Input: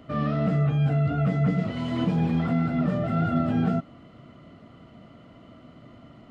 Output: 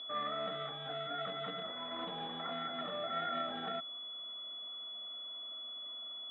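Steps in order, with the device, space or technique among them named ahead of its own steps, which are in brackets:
toy sound module (linearly interpolated sample-rate reduction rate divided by 8×; switching amplifier with a slow clock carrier 3,400 Hz; loudspeaker in its box 780–3,600 Hz, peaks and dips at 1,300 Hz +4 dB, 1,900 Hz +6 dB, 2,800 Hz −7 dB)
level −3.5 dB

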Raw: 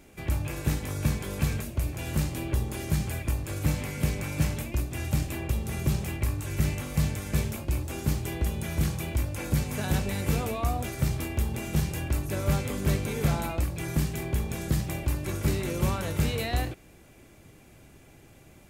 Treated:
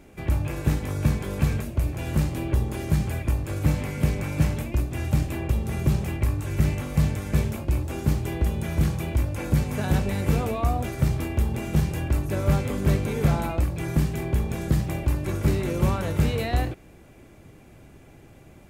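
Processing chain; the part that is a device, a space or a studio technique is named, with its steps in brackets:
behind a face mask (high-shelf EQ 2,400 Hz −8 dB)
level +4.5 dB

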